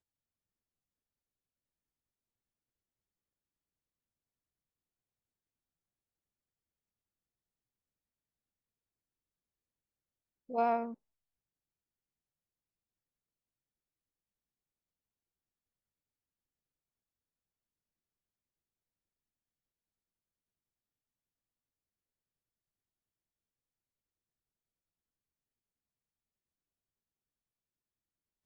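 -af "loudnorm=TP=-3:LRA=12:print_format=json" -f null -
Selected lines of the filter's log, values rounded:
"input_i" : "-34.0",
"input_tp" : "-19.5",
"input_lra" : "0.0",
"input_thresh" : "-45.1",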